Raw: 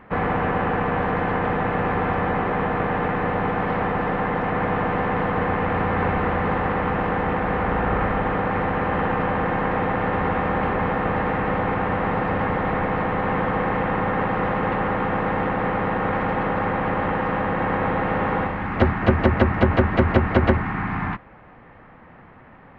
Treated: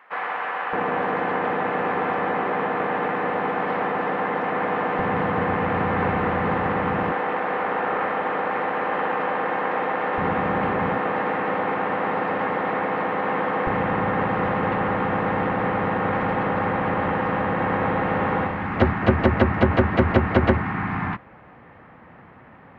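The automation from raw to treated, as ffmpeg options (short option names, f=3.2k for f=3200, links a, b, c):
-af "asetnsamples=n=441:p=0,asendcmd='0.73 highpass f 260;4.99 highpass f 94;7.12 highpass f 360;10.18 highpass f 110;10.98 highpass f 260;13.67 highpass f 70',highpass=900"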